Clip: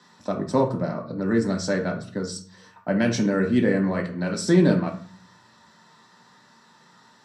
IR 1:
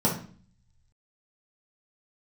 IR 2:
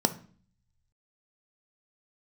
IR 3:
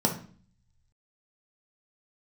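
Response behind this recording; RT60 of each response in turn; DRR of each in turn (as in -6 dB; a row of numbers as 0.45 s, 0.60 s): 3; 0.45 s, 0.45 s, 0.45 s; -5.0 dB, 9.0 dB, 1.0 dB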